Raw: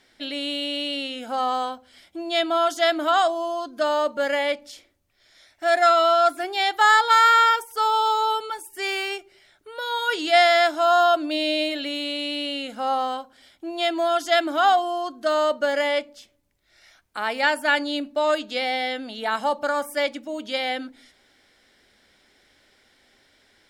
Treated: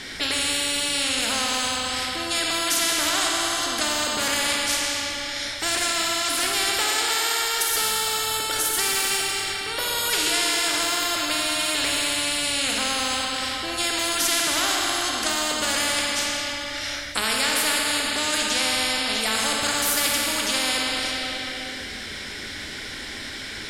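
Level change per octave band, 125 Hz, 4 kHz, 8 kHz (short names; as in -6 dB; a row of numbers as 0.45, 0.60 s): n/a, +6.0 dB, +19.0 dB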